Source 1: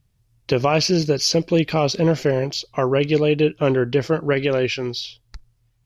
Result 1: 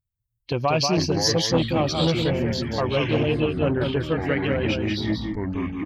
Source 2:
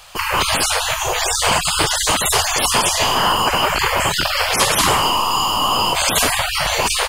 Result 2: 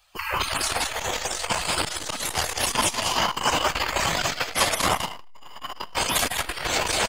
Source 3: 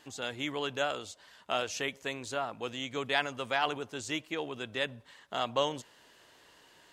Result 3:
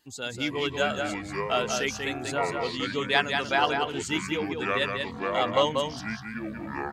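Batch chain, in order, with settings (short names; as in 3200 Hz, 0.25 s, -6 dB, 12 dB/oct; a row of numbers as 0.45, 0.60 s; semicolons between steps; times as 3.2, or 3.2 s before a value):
per-bin expansion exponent 1.5; echoes that change speed 0.24 s, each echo -6 st, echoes 3, each echo -6 dB; on a send: echo 0.189 s -5 dB; on the sum: dynamic EQ 420 Hz, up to -6 dB, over -35 dBFS, Q 5.4; core saturation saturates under 540 Hz; normalise peaks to -6 dBFS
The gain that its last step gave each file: -1.0, -3.0, +7.5 dB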